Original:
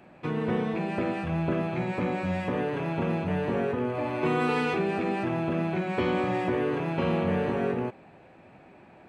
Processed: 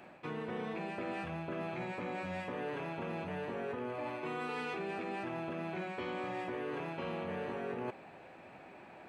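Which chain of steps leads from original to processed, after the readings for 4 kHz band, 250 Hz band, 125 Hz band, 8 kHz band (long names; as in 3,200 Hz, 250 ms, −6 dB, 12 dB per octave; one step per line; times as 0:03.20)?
−8.5 dB, −13.5 dB, −15.0 dB, can't be measured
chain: low-shelf EQ 290 Hz −10 dB
reversed playback
downward compressor 6 to 1, threshold −39 dBFS, peak gain reduction 13 dB
reversed playback
level +2 dB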